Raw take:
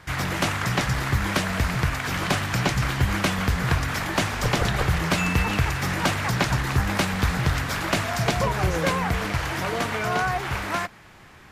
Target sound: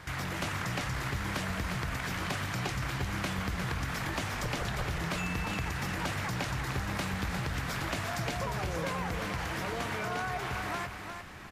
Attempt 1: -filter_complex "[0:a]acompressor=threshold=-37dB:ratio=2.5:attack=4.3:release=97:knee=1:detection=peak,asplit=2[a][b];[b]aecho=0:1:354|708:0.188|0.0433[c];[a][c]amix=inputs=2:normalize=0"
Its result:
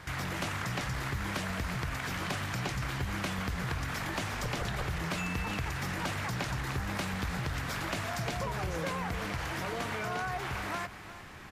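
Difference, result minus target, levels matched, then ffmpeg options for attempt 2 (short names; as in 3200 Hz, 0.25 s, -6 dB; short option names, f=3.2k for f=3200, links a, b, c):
echo-to-direct -7.5 dB
-filter_complex "[0:a]acompressor=threshold=-37dB:ratio=2.5:attack=4.3:release=97:knee=1:detection=peak,asplit=2[a][b];[b]aecho=0:1:354|708|1062:0.447|0.103|0.0236[c];[a][c]amix=inputs=2:normalize=0"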